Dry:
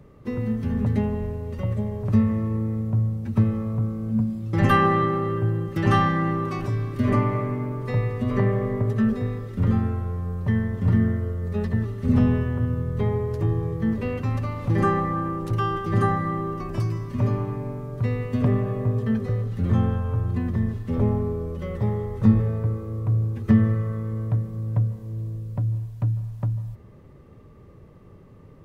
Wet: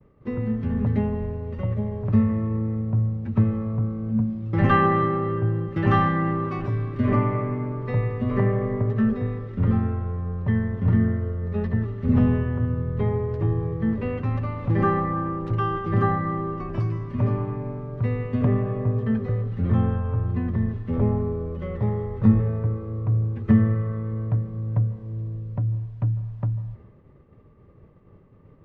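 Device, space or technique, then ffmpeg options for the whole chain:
hearing-loss simulation: -af "lowpass=2.7k,agate=range=-33dB:threshold=-43dB:ratio=3:detection=peak"

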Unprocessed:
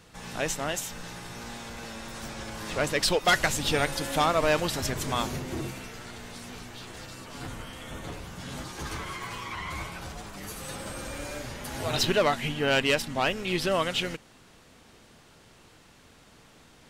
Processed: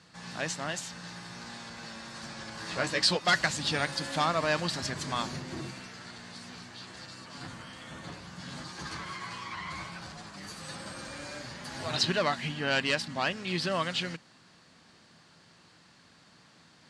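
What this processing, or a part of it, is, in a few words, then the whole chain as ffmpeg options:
car door speaker: -filter_complex "[0:a]highpass=100,equalizer=f=170:t=q:w=4:g=6,equalizer=f=440:t=q:w=4:g=-5,equalizer=f=1.1k:t=q:w=4:g=3,equalizer=f=1.7k:t=q:w=4:g=5,equalizer=f=4.5k:t=q:w=4:g=9,lowpass=f=9.1k:w=0.5412,lowpass=f=9.1k:w=1.3066,asettb=1/sr,asplit=3[a][b][c];[a]atrim=end=2.564[d];[b]atrim=start=2.56:end=3.17,asetpts=PTS-STARTPTS,afade=t=in:d=0.004:c=qsin,afade=t=out:st=0.606:d=0.004:c=qsin,asplit=2[e][f];[f]adelay=16,volume=-4.5dB[g];[e][g]amix=inputs=2:normalize=0,atrim=end_sample=26901[h];[c]atrim=start=3.166[i];[d][h]acrossfade=d=0.004:c1=hsin:c2=qsin[j];[j][i]acrossfade=d=0.004:c1=qsin:c2=hsin,volume=-5dB"

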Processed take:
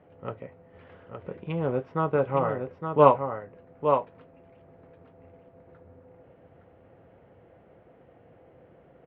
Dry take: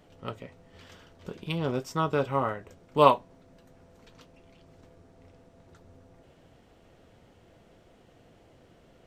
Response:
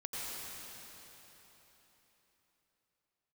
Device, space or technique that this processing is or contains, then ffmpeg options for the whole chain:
bass cabinet: -af "highpass=82,equalizer=f=230:t=q:w=4:g=-3,equalizer=f=510:t=q:w=4:g=6,equalizer=f=780:t=q:w=4:g=3,lowpass=f=2.3k:w=0.5412,lowpass=f=2.3k:w=1.3066,lowshelf=f=330:g=3,aecho=1:1:865:0.501,volume=-1dB"

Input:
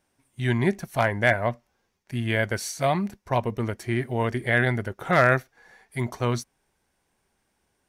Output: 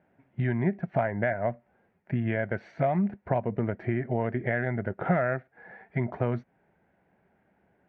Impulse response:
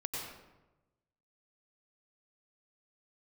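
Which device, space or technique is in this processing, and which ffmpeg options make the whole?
bass amplifier: -af "acompressor=threshold=-32dB:ratio=6,highpass=84,equalizer=f=180:t=q:w=4:g=7,equalizer=f=650:t=q:w=4:g=5,equalizer=f=1.1k:t=q:w=4:g=-9,lowpass=f=2k:w=0.5412,lowpass=f=2k:w=1.3066,volume=6.5dB"

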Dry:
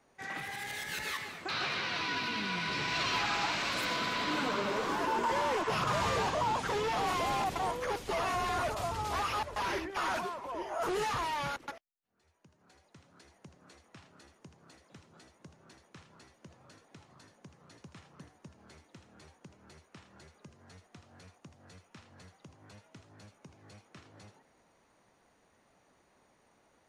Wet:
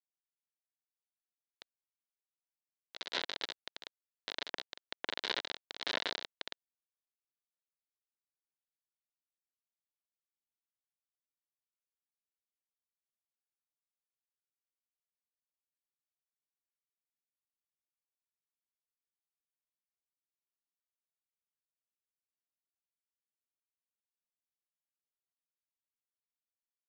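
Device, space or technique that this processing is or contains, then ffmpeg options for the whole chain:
hand-held game console: -af "acrusher=bits=3:mix=0:aa=0.000001,highpass=410,equalizer=f=800:t=q:w=4:g=-6,equalizer=f=1.2k:t=q:w=4:g=-9,equalizer=f=2.5k:t=q:w=4:g=-7,equalizer=f=3.9k:t=q:w=4:g=6,lowpass=f=4.1k:w=0.5412,lowpass=f=4.1k:w=1.3066,volume=3.5dB"

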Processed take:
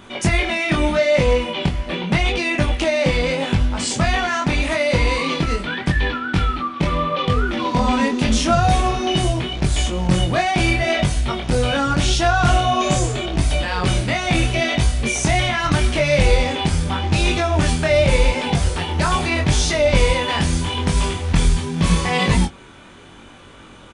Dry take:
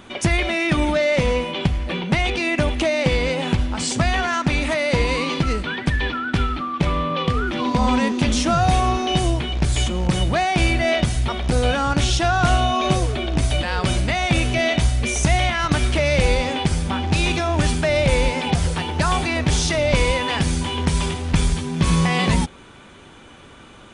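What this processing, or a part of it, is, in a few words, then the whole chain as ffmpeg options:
double-tracked vocal: -filter_complex "[0:a]asplit=2[a][b];[b]adelay=22,volume=-10.5dB[c];[a][c]amix=inputs=2:normalize=0,flanger=delay=20:depth=5.3:speed=0.81,asettb=1/sr,asplit=3[d][e][f];[d]atrim=end=12.804[g];[e]atrim=start=12.8:end=13.26,asetpts=PTS-STARTPTS,afade=t=in:d=0.004:c=qsin,afade=t=out:st=0.456:d=0.004:c=qsin,equalizer=f=7.2k:w=3.7:g=14[h];[f]atrim=start=13.256[i];[g][h]acrossfade=d=0.004:c1=hsin:c2=qsin[j];[j][i]acrossfade=d=0.004:c1=qsin:c2=hsin,volume=4dB"

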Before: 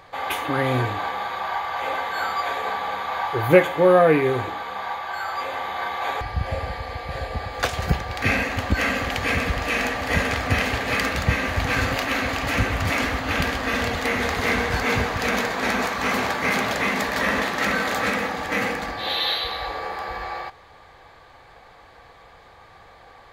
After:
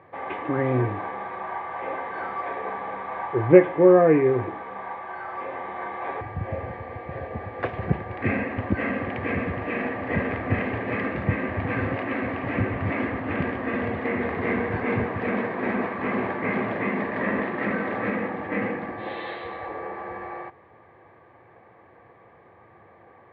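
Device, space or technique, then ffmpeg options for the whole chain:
bass cabinet: -af "highpass=f=90:w=0.5412,highpass=f=90:w=1.3066,equalizer=f=110:t=q:w=4:g=3,equalizer=f=210:t=q:w=4:g=4,equalizer=f=350:t=q:w=4:g=8,equalizer=f=820:t=q:w=4:g=-4,equalizer=f=1.4k:t=q:w=4:g=-9,lowpass=f=2k:w=0.5412,lowpass=f=2k:w=1.3066,volume=-2dB"

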